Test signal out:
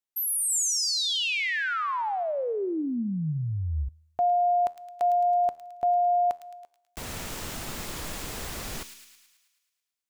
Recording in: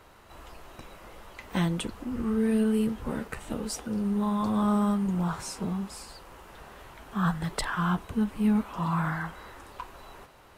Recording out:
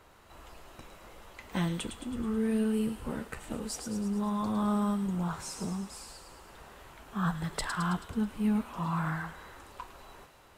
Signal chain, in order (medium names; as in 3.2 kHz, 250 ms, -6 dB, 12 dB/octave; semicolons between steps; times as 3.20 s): peaking EQ 7.3 kHz +2.5 dB 0.3 oct; feedback comb 79 Hz, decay 0.78 s, harmonics all, mix 40%; on a send: feedback echo behind a high-pass 108 ms, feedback 59%, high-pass 2.7 kHz, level -6 dB